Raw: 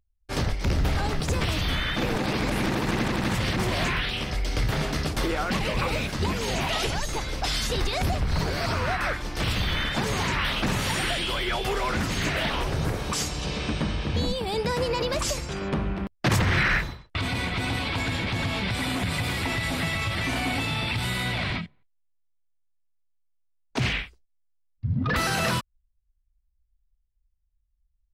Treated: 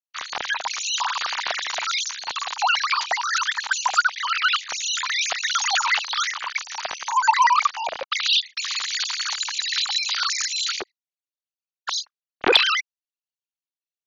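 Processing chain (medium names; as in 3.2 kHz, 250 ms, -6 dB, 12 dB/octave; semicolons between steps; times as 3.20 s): formants replaced by sine waves; band-stop 2.6 kHz, Q 11; speed mistake 7.5 ips tape played at 15 ips; transformer saturation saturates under 1.4 kHz; trim +3 dB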